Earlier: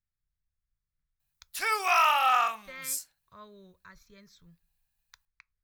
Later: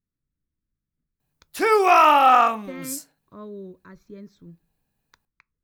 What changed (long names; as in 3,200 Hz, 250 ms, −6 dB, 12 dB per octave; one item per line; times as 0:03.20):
speech −5.5 dB
master: remove guitar amp tone stack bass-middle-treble 10-0-10